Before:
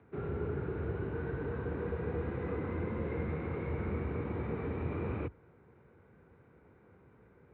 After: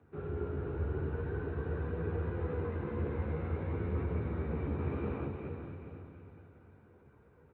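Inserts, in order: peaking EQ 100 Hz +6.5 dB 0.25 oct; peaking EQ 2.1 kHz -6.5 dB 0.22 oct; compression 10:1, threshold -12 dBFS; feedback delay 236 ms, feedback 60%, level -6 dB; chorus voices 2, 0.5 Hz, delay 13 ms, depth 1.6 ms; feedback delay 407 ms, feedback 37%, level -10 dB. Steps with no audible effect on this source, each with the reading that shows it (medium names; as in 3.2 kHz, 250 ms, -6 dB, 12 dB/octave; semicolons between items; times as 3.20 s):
compression, threshold -12 dBFS: peak at its input -22.5 dBFS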